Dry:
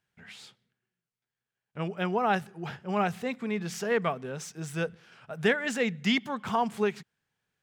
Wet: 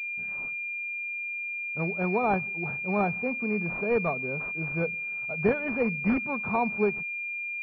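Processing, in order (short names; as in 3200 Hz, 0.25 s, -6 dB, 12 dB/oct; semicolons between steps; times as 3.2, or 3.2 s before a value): pulse-width modulation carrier 2400 Hz; gain +2 dB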